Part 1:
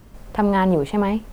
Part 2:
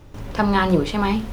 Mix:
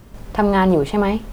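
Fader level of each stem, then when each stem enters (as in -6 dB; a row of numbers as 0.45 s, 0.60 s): +3.0 dB, -8.0 dB; 0.00 s, 0.00 s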